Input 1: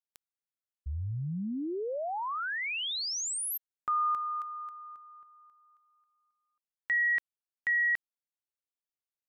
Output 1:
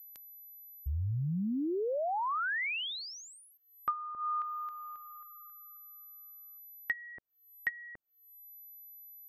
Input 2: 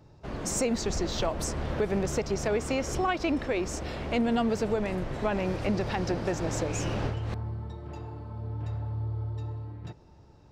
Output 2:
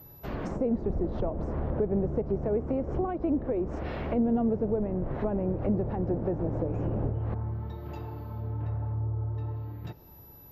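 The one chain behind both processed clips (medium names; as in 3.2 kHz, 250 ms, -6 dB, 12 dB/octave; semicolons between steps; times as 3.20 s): whistle 12 kHz -49 dBFS; low-pass that closes with the level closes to 540 Hz, closed at -26 dBFS; trim +1.5 dB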